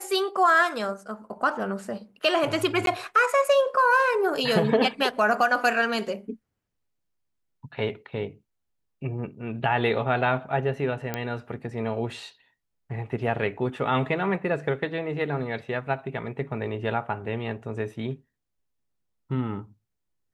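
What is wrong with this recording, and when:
0:02.86–0:02.87: drop-out 12 ms
0:11.14: click −13 dBFS

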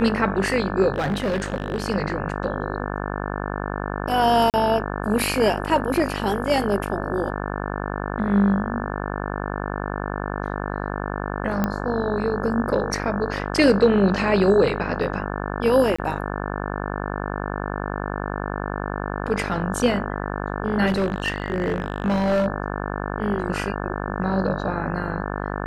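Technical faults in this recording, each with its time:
mains buzz 50 Hz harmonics 35 −28 dBFS
0:00.94–0:01.84: clipping −19 dBFS
0:04.50–0:04.54: drop-out 38 ms
0:11.64: click −9 dBFS
0:15.96–0:15.98: drop-out 25 ms
0:20.86–0:22.47: clipping −17 dBFS

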